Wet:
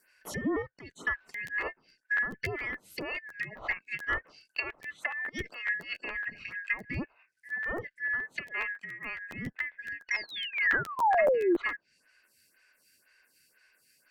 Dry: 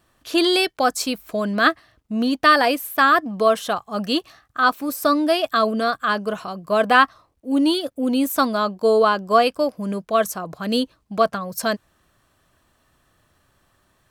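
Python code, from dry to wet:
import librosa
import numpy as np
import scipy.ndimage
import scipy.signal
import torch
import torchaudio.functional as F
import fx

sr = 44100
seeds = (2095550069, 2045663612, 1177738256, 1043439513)

y = fx.band_shuffle(x, sr, order='3142')
y = fx.over_compress(y, sr, threshold_db=-26.0, ratio=-0.5, at=(5.29, 6.01))
y = fx.env_lowpass_down(y, sr, base_hz=900.0, full_db=-15.5)
y = fx.peak_eq(y, sr, hz=1600.0, db=-12.5, octaves=2.0, at=(0.62, 1.07))
y = fx.spec_paint(y, sr, seeds[0], shape='fall', start_s=10.11, length_s=1.45, low_hz=320.0, high_hz=5800.0, level_db=-20.0)
y = fx.env_lowpass_down(y, sr, base_hz=1600.0, full_db=-22.5)
y = fx.high_shelf(y, sr, hz=6700.0, db=11.0)
y = fx.buffer_crackle(y, sr, first_s=0.9, period_s=0.14, block=512, kind='repeat')
y = fx.stagger_phaser(y, sr, hz=2.0)
y = y * 10.0 ** (-2.5 / 20.0)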